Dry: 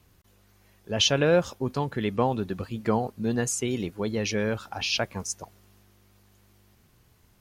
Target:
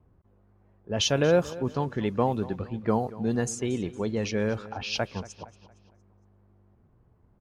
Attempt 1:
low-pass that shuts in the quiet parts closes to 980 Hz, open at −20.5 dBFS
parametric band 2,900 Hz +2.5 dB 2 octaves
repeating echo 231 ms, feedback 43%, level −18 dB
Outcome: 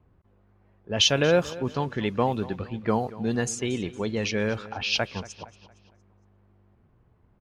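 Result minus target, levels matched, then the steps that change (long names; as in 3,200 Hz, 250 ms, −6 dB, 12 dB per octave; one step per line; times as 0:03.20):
4,000 Hz band +4.5 dB
change: parametric band 2,900 Hz −4.5 dB 2 octaves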